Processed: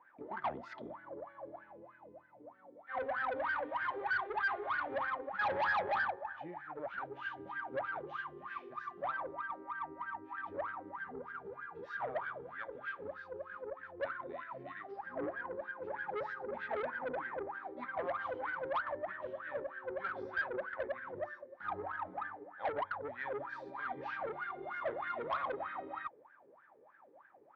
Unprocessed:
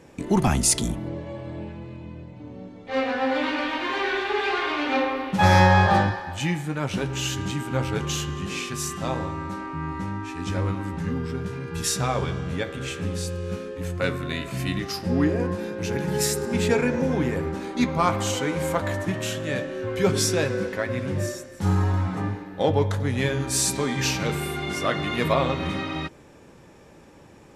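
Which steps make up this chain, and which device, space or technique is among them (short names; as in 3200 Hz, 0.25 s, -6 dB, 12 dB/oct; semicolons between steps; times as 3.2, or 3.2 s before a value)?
wah-wah guitar rig (wah 3.2 Hz 420–1600 Hz, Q 18; tube stage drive 37 dB, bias 0.25; speaker cabinet 80–3600 Hz, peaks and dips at 180 Hz -5 dB, 450 Hz -10 dB, 1900 Hz +3 dB, 2700 Hz -6 dB); gain +8 dB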